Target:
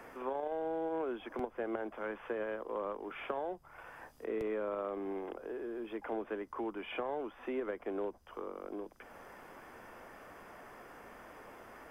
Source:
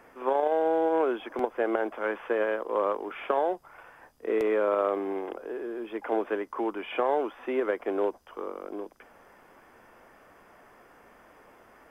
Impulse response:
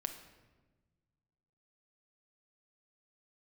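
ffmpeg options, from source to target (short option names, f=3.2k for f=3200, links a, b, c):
-filter_complex "[0:a]acrossover=split=170[a][b];[b]acompressor=threshold=-52dB:ratio=2[c];[a][c]amix=inputs=2:normalize=0,volume=3.5dB"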